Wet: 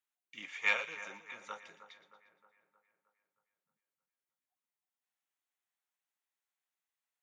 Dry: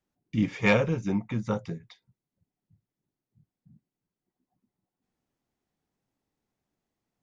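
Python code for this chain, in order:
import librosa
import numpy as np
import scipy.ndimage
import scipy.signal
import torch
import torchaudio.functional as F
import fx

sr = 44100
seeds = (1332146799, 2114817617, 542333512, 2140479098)

y = scipy.signal.sosfilt(scipy.signal.butter(2, 1400.0, 'highpass', fs=sr, output='sos'), x)
y = fx.peak_eq(y, sr, hz=5000.0, db=-10.5, octaves=0.37)
y = fx.echo_split(y, sr, split_hz=1900.0, low_ms=312, high_ms=117, feedback_pct=52, wet_db=-12.5)
y = F.gain(torch.from_numpy(y), -2.5).numpy()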